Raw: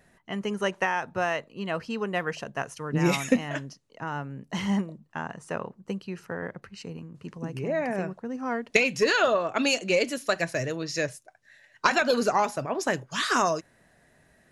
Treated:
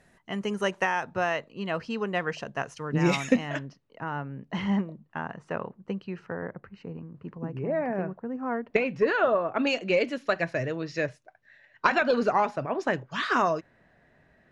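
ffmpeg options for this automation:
-af "asetnsamples=n=441:p=0,asendcmd='1.04 lowpass f 6000;3.59 lowpass f 2900;6.32 lowpass f 1600;9.67 lowpass f 2900',lowpass=11000"

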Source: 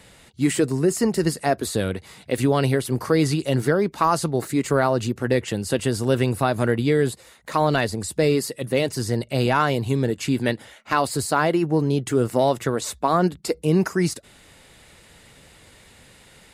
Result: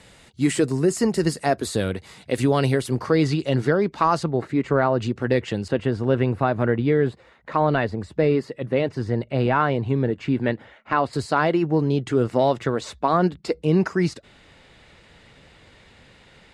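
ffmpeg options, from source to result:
-af "asetnsamples=n=441:p=0,asendcmd='2.95 lowpass f 4800;4.23 lowpass f 2400;5.02 lowpass f 4400;5.68 lowpass f 2200;11.13 lowpass f 4300',lowpass=9000"

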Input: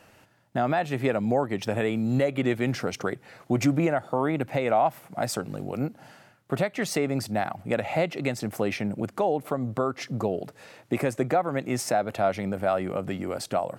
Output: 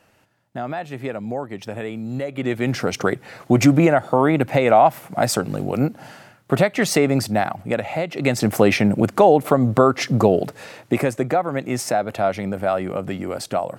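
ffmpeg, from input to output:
-af "volume=11.2,afade=t=in:st=2.27:d=0.82:silence=0.251189,afade=t=out:st=7.1:d=0.96:silence=0.354813,afade=t=in:st=8.06:d=0.39:silence=0.251189,afade=t=out:st=10.37:d=0.8:silence=0.398107"

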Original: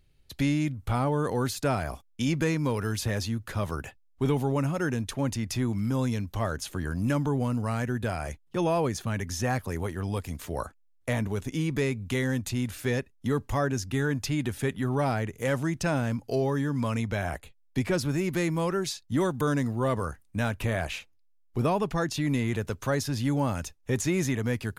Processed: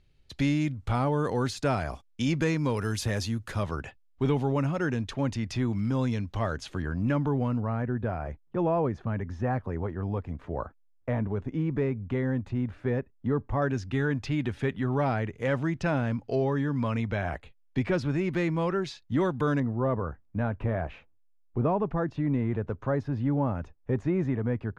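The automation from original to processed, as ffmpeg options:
-af "asetnsamples=n=441:p=0,asendcmd='2.77 lowpass f 10000;3.63 lowpass f 4500;6.82 lowpass f 2600;7.6 lowpass f 1300;13.62 lowpass f 3200;19.6 lowpass f 1200',lowpass=6300"

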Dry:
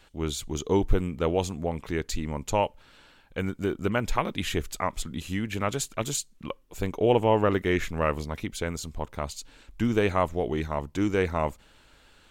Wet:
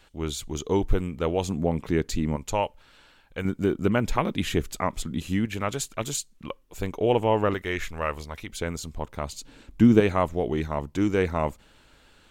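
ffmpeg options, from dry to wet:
-af "asetnsamples=n=441:p=0,asendcmd='1.48 equalizer g 7.5;2.36 equalizer g -3;3.45 equalizer g 5.5;5.45 equalizer g -1;7.54 equalizer g -8.5;8.5 equalizer g 1;9.33 equalizer g 10;10 equalizer g 2.5',equalizer=f=210:t=o:w=2.5:g=-0.5"

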